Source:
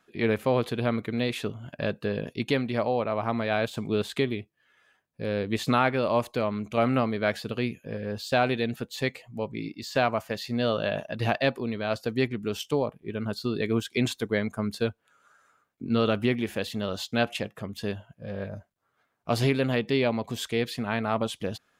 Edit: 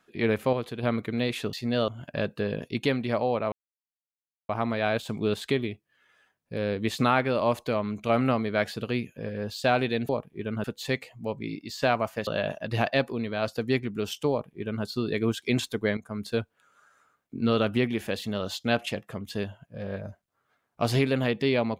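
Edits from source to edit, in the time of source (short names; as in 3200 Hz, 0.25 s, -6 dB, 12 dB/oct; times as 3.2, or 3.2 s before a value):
0.53–0.83 gain -5.5 dB
3.17 insert silence 0.97 s
10.4–10.75 move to 1.53
12.78–13.33 copy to 8.77
14.45–14.88 fade in, from -12 dB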